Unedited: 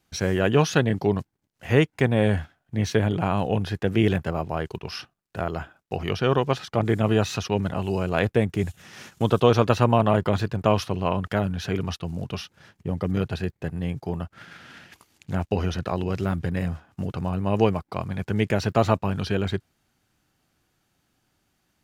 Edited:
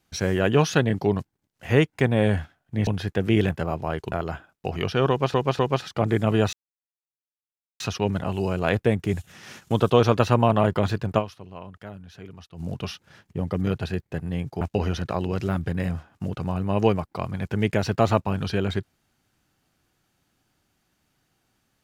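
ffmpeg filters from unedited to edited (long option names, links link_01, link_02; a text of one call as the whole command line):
ffmpeg -i in.wav -filter_complex "[0:a]asplit=9[link_01][link_02][link_03][link_04][link_05][link_06][link_07][link_08][link_09];[link_01]atrim=end=2.872[link_10];[link_02]atrim=start=3.538:end=4.792[link_11];[link_03]atrim=start=5.388:end=6.612[link_12];[link_04]atrim=start=6.358:end=6.612[link_13];[link_05]atrim=start=6.358:end=7.3,asetpts=PTS-STARTPTS,afade=type=out:start_time=0.938:duration=0.004:curve=hsin,apad=pad_dur=1.27[link_14];[link_06]atrim=start=7.3:end=10.96,asetpts=PTS-STARTPTS,afade=type=in:duration=0.004:curve=hsin,afade=type=out:start_time=3.38:duration=0.28:curve=exp:silence=0.16788[link_15];[link_07]atrim=start=10.96:end=11.83,asetpts=PTS-STARTPTS,volume=-15.5dB[link_16];[link_08]atrim=start=11.83:end=14.112,asetpts=PTS-STARTPTS,afade=type=in:duration=0.28:curve=exp:silence=0.16788[link_17];[link_09]atrim=start=15.378[link_18];[link_10][link_11]acrossfade=duration=0.004:curve1=hsin:curve2=hsin[link_19];[link_19][link_12]acrossfade=duration=0.004:curve1=hsin:curve2=hsin[link_20];[link_20][link_13]acrossfade=duration=0.004:curve1=hsin:curve2=hsin[link_21];[link_14][link_15][link_16][link_17]concat=n=4:v=0:a=1[link_22];[link_21][link_22]acrossfade=duration=0.004:curve1=hsin:curve2=hsin[link_23];[link_23][link_18]acrossfade=duration=0.004:curve1=hsin:curve2=hsin" out.wav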